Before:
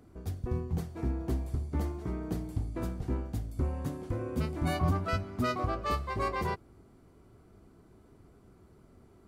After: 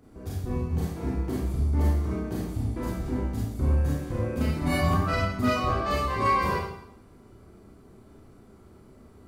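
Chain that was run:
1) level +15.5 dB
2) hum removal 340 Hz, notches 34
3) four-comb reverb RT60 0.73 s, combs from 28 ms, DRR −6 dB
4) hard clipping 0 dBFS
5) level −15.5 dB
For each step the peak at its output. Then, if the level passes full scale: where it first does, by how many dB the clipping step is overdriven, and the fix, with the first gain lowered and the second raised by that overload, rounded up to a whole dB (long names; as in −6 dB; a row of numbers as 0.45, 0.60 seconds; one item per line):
−2.5, −2.5, +3.5, 0.0, −15.5 dBFS
step 3, 3.5 dB
step 1 +11.5 dB, step 5 −11.5 dB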